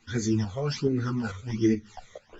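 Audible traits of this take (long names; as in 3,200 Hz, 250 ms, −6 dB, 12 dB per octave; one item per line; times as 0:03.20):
phaser sweep stages 12, 1.3 Hz, lowest notch 270–1,000 Hz
tremolo saw up 2.3 Hz, depth 55%
a shimmering, thickened sound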